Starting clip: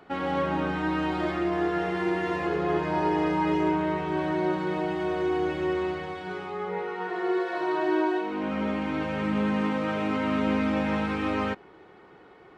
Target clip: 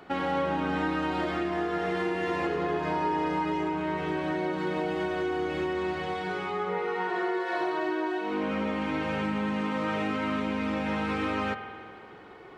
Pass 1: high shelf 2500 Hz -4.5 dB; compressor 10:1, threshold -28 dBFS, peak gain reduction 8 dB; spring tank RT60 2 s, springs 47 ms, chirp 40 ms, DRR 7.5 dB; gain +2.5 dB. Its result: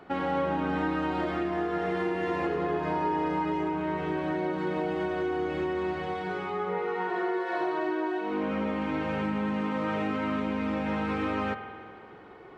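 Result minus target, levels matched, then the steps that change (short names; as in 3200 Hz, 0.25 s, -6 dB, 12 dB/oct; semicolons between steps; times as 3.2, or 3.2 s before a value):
4000 Hz band -4.0 dB
change: high shelf 2500 Hz +3 dB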